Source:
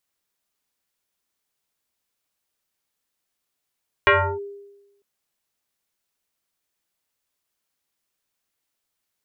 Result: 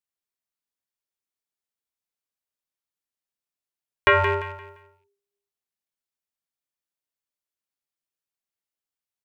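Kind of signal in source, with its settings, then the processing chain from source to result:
FM tone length 0.95 s, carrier 402 Hz, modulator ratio 1.23, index 4.4, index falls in 0.32 s linear, decay 1.05 s, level -10 dB
rattle on loud lows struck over -33 dBFS, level -26 dBFS; gate -54 dBFS, range -14 dB; on a send: feedback delay 173 ms, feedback 31%, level -9 dB

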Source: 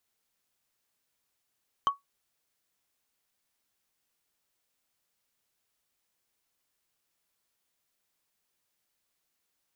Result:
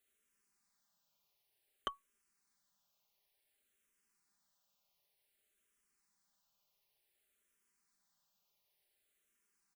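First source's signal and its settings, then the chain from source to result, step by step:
wood hit, lowest mode 1.12 kHz, decay 0.15 s, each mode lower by 12 dB, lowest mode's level -17 dB
comb 5 ms, depth 56%; barber-pole phaser -0.55 Hz

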